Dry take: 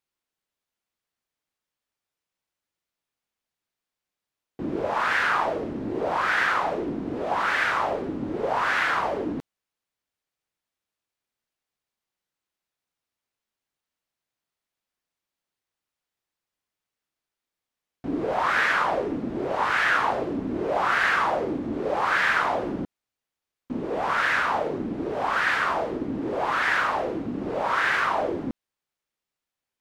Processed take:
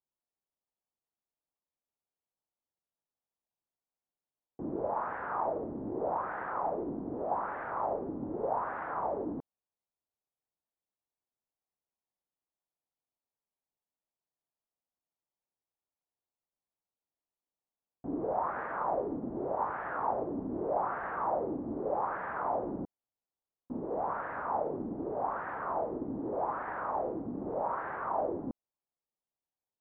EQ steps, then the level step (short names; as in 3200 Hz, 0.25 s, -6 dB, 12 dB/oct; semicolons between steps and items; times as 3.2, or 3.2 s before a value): ladder low-pass 1100 Hz, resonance 30%; -1.5 dB